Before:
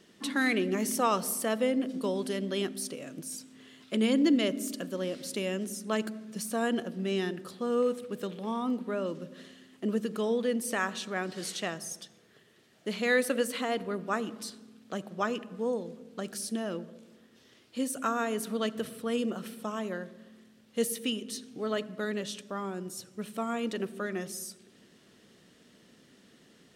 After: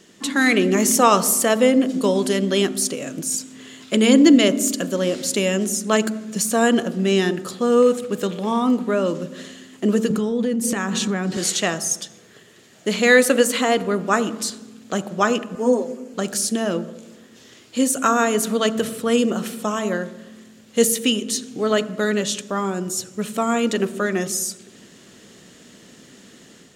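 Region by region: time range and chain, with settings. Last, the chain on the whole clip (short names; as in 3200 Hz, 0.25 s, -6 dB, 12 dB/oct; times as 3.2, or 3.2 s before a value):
10.1–11.37 bell 160 Hz +11.5 dB 2.3 oct + notch 620 Hz, Q 8.4 + compressor 10:1, threshold -30 dBFS
15.55–16.14 Chebyshev high-pass 220 Hz, order 4 + bell 3700 Hz -11.5 dB 0.33 oct + comb 7.5 ms, depth 78%
whole clip: bell 7000 Hz +9.5 dB 0.29 oct; de-hum 74.04 Hz, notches 20; AGC gain up to 4.5 dB; gain +8 dB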